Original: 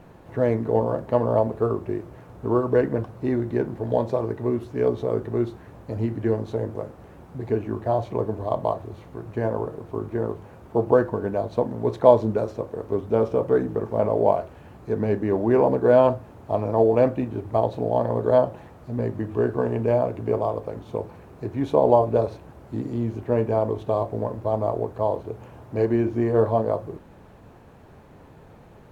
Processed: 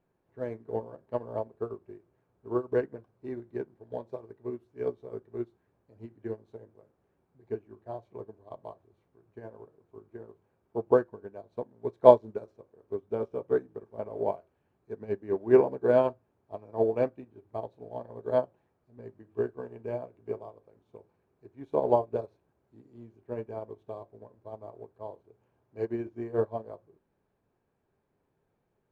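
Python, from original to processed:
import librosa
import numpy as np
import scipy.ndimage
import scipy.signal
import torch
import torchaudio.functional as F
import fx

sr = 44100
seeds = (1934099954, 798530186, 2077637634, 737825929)

y = fx.peak_eq(x, sr, hz=65.0, db=-4.5, octaves=1.2)
y = fx.small_body(y, sr, hz=(390.0, 1600.0, 2300.0), ring_ms=45, db=6)
y = fx.upward_expand(y, sr, threshold_db=-28.0, expansion=2.5)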